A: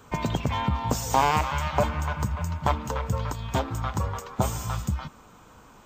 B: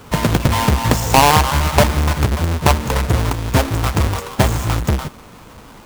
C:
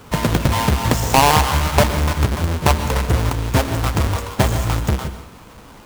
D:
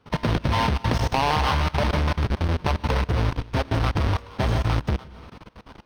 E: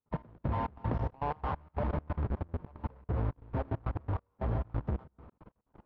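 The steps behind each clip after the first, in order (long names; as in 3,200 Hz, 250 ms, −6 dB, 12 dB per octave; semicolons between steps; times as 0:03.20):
each half-wave held at its own peak; level +6.5 dB
dense smooth reverb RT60 0.57 s, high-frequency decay 0.95×, pre-delay 110 ms, DRR 11 dB; level −2 dB
Savitzky-Golay smoothing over 15 samples; output level in coarse steps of 21 dB
low-pass filter 1,100 Hz 12 dB per octave; gate pattern ".x..xx.xxx.x" 136 BPM −24 dB; level −9 dB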